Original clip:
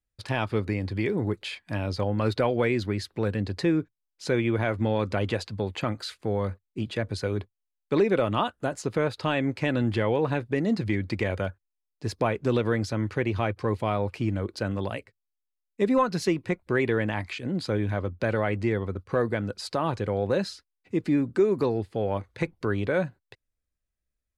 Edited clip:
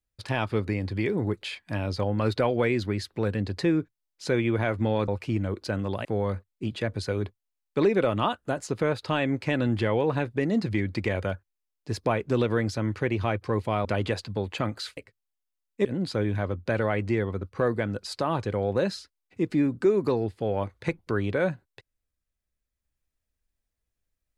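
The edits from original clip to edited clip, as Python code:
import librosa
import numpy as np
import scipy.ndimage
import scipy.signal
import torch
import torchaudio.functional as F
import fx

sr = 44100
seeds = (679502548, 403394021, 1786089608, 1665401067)

y = fx.edit(x, sr, fx.swap(start_s=5.08, length_s=1.12, other_s=14.0, other_length_s=0.97),
    fx.cut(start_s=15.85, length_s=1.54), tone=tone)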